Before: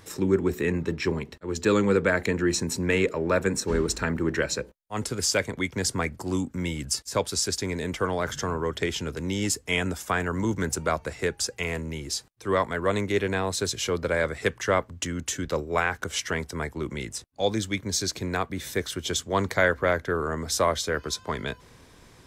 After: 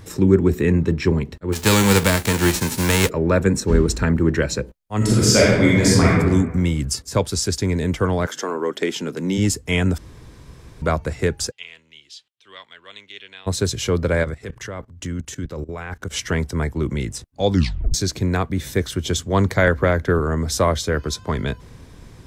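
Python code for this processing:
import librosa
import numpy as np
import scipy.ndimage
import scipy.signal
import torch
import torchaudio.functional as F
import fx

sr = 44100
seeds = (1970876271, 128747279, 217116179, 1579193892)

y = fx.envelope_flatten(x, sr, power=0.3, at=(1.52, 3.08), fade=0.02)
y = fx.reverb_throw(y, sr, start_s=4.97, length_s=1.15, rt60_s=1.2, drr_db=-6.5)
y = fx.highpass(y, sr, hz=fx.line((8.25, 340.0), (9.37, 160.0)), slope=24, at=(8.25, 9.37), fade=0.02)
y = fx.bandpass_q(y, sr, hz=3200.0, q=4.4, at=(11.5, 13.46), fade=0.02)
y = fx.level_steps(y, sr, step_db=18, at=(14.23, 16.1), fade=0.02)
y = fx.band_squash(y, sr, depth_pct=70, at=(19.67, 20.19))
y = fx.edit(y, sr, fx.room_tone_fill(start_s=9.98, length_s=0.84),
    fx.tape_stop(start_s=17.5, length_s=0.44), tone=tone)
y = fx.low_shelf(y, sr, hz=270.0, db=12.0)
y = y * 10.0 ** (2.5 / 20.0)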